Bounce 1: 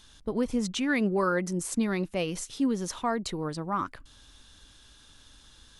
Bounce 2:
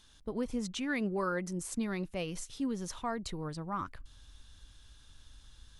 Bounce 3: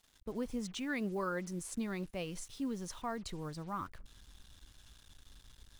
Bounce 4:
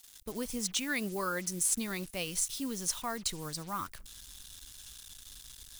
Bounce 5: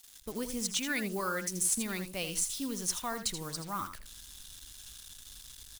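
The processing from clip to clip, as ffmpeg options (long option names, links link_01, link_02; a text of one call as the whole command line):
ffmpeg -i in.wav -af "asubboost=boost=3:cutoff=150,volume=-6.5dB" out.wav
ffmpeg -i in.wav -af "acrusher=bits=8:mix=0:aa=0.5,volume=-3.5dB" out.wav
ffmpeg -i in.wav -af "crystalizer=i=6:c=0,volume=22.5dB,asoftclip=hard,volume=-22.5dB" out.wav
ffmpeg -i in.wav -af "aecho=1:1:81:0.335" out.wav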